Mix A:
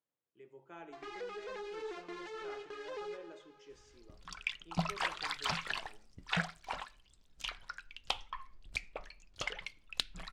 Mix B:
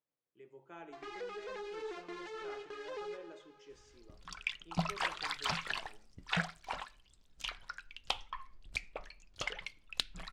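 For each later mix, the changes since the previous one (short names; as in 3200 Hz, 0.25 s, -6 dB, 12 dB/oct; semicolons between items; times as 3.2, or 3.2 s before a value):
none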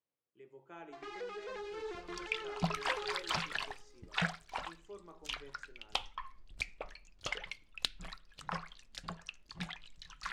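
second sound: entry -2.15 s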